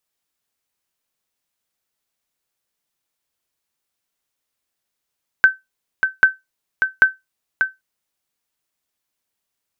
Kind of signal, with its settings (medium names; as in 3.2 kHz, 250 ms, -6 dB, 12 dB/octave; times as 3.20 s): sonar ping 1.54 kHz, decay 0.18 s, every 0.79 s, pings 3, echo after 0.59 s, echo -6.5 dB -2 dBFS